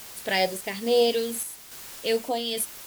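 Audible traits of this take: phasing stages 2, 2.3 Hz, lowest notch 800–1700 Hz; a quantiser's noise floor 8-bit, dither triangular; random-step tremolo; Vorbis

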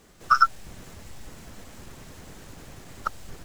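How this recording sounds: noise floor -55 dBFS; spectral tilt -2.5 dB/octave

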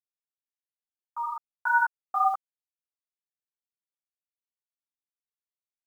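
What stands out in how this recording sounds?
a quantiser's noise floor 10-bit, dither none; chopped level 1.4 Hz, depth 60%, duty 60%; a shimmering, thickened sound

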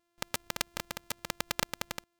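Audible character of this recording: a buzz of ramps at a fixed pitch in blocks of 128 samples

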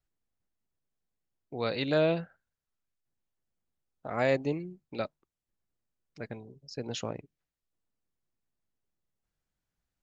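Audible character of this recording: noise floor -89 dBFS; spectral tilt -4.5 dB/octave

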